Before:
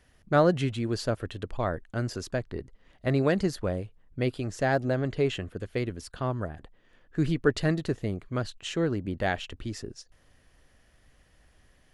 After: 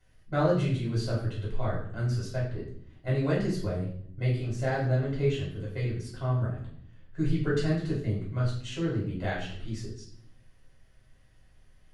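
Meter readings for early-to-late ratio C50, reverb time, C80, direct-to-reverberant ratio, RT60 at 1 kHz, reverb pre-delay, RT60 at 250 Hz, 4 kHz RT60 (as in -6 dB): 5.0 dB, 0.60 s, 8.0 dB, -7.0 dB, 0.55 s, 3 ms, 1.1 s, 0.55 s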